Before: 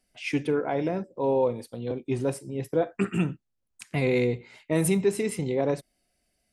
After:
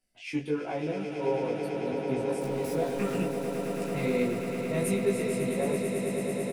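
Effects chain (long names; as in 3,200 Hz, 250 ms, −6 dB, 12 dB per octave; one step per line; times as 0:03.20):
0:02.41–0:03.19: converter with a step at zero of −32 dBFS
multi-voice chorus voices 2, 1.1 Hz, delay 14 ms, depth 3.1 ms
double-tracking delay 20 ms −2 dB
on a send: echo that builds up and dies away 110 ms, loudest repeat 8, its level −10 dB
on the sum: level −5 dB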